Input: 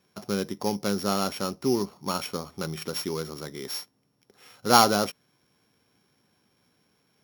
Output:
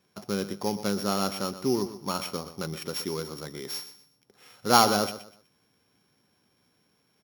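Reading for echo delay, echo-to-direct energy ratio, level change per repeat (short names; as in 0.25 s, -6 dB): 0.123 s, -12.5 dB, -11.0 dB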